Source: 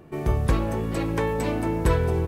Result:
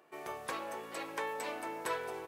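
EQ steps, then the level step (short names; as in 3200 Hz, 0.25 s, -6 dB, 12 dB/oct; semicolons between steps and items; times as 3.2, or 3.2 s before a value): HPF 690 Hz 12 dB/oct; -6.5 dB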